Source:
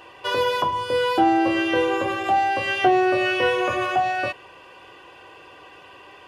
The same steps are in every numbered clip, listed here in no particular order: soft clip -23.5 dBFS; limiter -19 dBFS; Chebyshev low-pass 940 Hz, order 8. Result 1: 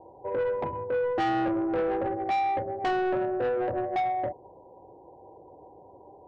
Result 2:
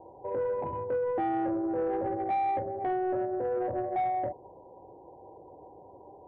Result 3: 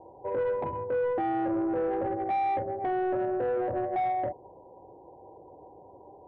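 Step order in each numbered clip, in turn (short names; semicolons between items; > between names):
Chebyshev low-pass > soft clip > limiter; limiter > Chebyshev low-pass > soft clip; Chebyshev low-pass > limiter > soft clip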